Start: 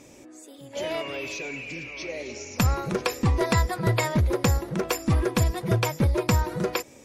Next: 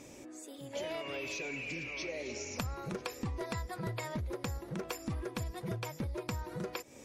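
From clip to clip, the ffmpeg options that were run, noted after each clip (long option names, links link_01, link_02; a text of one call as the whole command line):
ffmpeg -i in.wav -af "acompressor=threshold=-34dB:ratio=6,volume=-2dB" out.wav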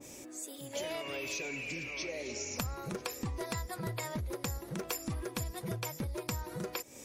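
ffmpeg -i in.wav -af "crystalizer=i=2:c=0,adynamicequalizer=threshold=0.00355:dfrequency=2000:dqfactor=0.7:tfrequency=2000:tqfactor=0.7:attack=5:release=100:ratio=0.375:range=1.5:mode=cutabove:tftype=highshelf" out.wav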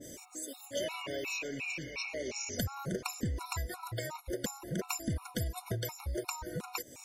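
ffmpeg -i in.wav -af "afftfilt=real='re*gt(sin(2*PI*2.8*pts/sr)*(1-2*mod(floor(b*sr/1024/730),2)),0)':imag='im*gt(sin(2*PI*2.8*pts/sr)*(1-2*mod(floor(b*sr/1024/730),2)),0)':win_size=1024:overlap=0.75,volume=3.5dB" out.wav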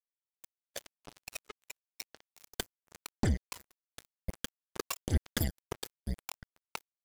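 ffmpeg -i in.wav -af "aphaser=in_gain=1:out_gain=1:delay=2.7:decay=0.73:speed=0.95:type=triangular,acrusher=bits=3:mix=0:aa=0.5" out.wav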